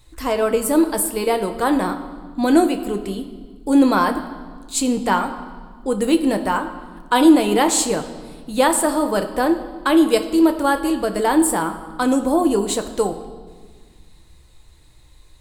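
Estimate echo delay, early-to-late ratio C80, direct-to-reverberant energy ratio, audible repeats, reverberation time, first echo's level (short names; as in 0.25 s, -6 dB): none, 12.5 dB, 6.0 dB, none, 1.6 s, none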